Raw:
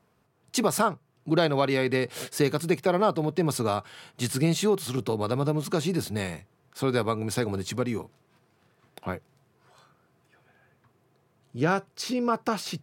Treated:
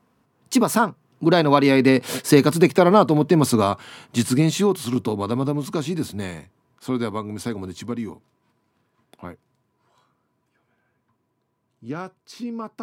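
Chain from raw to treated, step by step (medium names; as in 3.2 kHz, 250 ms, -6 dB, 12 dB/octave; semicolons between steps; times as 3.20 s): Doppler pass-by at 2.62 s, 16 m/s, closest 21 m; small resonant body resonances 250/1000 Hz, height 9 dB; trim +8 dB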